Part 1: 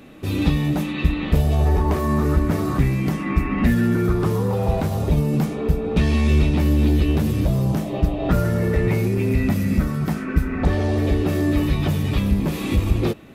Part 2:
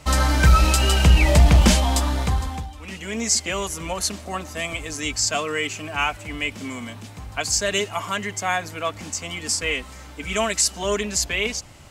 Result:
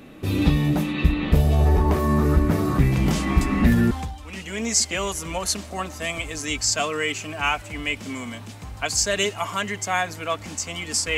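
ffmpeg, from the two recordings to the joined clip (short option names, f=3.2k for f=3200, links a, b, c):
-filter_complex "[1:a]asplit=2[a][b];[0:a]apad=whole_dur=11.17,atrim=end=11.17,atrim=end=3.912[c];[b]atrim=start=2.458:end=9.72[d];[a]atrim=start=1.47:end=2.46,asetpts=PTS-STARTPTS,volume=-11.5dB,afade=t=in:d=0.004:c=hsin,afade=t=out:st=0.986:d=0.004:c=hsin,adelay=2920[e];[c][d]acrossfade=d=0.004:c1=hsin:c2=hsin[f];[f][e]amix=inputs=2:normalize=0"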